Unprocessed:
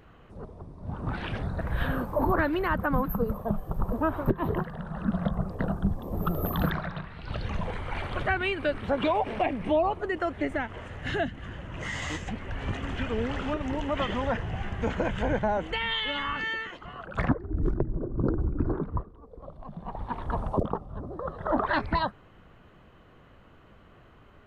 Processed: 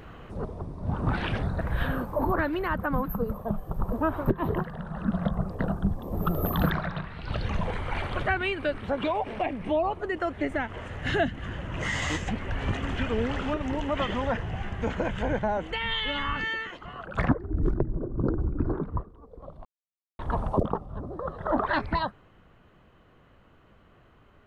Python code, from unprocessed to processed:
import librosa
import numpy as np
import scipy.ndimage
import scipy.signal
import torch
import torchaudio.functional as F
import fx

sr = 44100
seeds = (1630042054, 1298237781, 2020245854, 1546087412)

y = fx.low_shelf(x, sr, hz=150.0, db=8.5, at=(15.84, 16.46))
y = fx.edit(y, sr, fx.silence(start_s=19.65, length_s=0.54), tone=tone)
y = fx.rider(y, sr, range_db=10, speed_s=2.0)